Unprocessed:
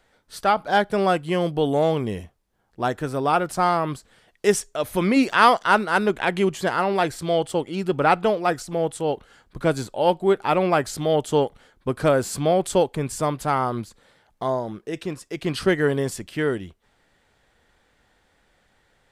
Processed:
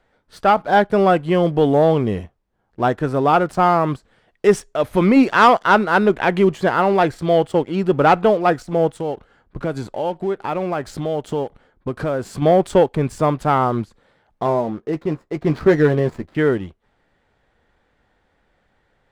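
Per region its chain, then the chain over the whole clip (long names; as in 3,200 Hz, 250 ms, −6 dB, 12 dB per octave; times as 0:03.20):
0:08.89–0:12.42: downward compressor 2.5 to 1, threshold −29 dBFS + one half of a high-frequency compander decoder only
0:14.45–0:16.35: running median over 15 samples + double-tracking delay 13 ms −8 dB
whole clip: low-pass filter 1,800 Hz 6 dB per octave; leveller curve on the samples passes 1; level +3 dB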